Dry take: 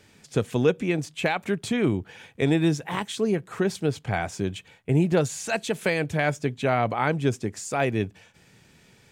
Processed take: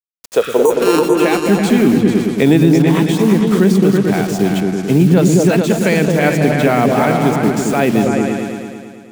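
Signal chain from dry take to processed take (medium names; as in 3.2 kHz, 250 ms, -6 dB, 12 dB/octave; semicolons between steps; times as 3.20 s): 0.65–1.20 s: sorted samples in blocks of 32 samples; high-pass sweep 520 Hz -> 200 Hz, 0.43–1.61 s; random-step tremolo; bit crusher 7-bit; 0.45–0.74 s: spectral replace 1.1–5.7 kHz both; delay with an opening low-pass 110 ms, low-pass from 200 Hz, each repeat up 2 oct, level 0 dB; loudness maximiser +12.5 dB; trim -1 dB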